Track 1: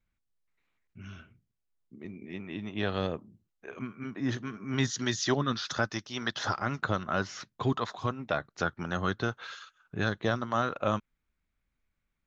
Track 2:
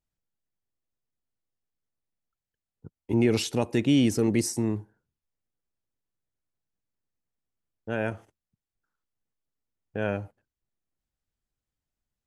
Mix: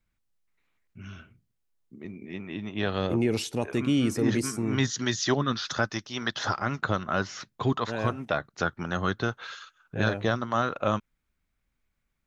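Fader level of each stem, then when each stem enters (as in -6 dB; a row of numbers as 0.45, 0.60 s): +2.5, -3.0 dB; 0.00, 0.00 s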